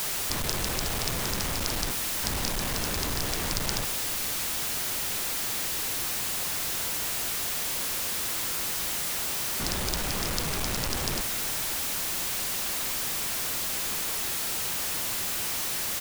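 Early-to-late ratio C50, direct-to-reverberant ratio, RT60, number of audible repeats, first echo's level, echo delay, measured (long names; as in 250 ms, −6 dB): no reverb audible, no reverb audible, no reverb audible, 1, −15.5 dB, 550 ms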